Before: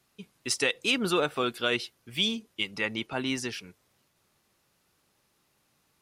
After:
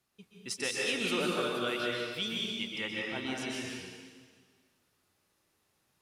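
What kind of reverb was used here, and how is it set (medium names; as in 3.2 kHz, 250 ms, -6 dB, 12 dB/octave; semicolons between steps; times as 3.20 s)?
plate-style reverb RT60 1.7 s, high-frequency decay 0.95×, pre-delay 115 ms, DRR -3.5 dB; trim -9 dB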